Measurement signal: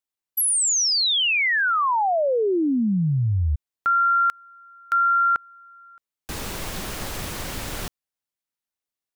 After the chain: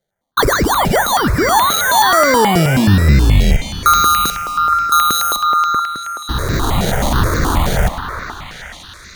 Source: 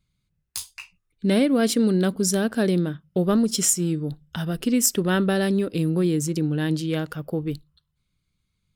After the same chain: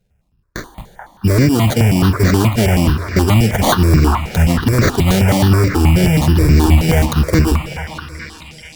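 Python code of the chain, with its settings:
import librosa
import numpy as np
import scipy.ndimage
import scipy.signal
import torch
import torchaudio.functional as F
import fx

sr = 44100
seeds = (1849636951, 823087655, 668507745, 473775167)

p1 = fx.octave_divider(x, sr, octaves=1, level_db=3.0)
p2 = fx.rider(p1, sr, range_db=5, speed_s=0.5)
p3 = fx.sample_hold(p2, sr, seeds[0], rate_hz=2600.0, jitter_pct=0)
p4 = fx.cheby_harmonics(p3, sr, harmonics=(5,), levels_db=(-8,), full_scale_db=-5.0)
p5 = p4 + fx.echo_stepped(p4, sr, ms=433, hz=1100.0, octaves=0.7, feedback_pct=70, wet_db=-2.5, dry=0)
p6 = fx.rev_plate(p5, sr, seeds[1], rt60_s=4.1, hf_ratio=0.9, predelay_ms=0, drr_db=12.5)
p7 = fx.phaser_held(p6, sr, hz=9.4, low_hz=290.0, high_hz=3100.0)
y = p7 * 10.0 ** (3.0 / 20.0)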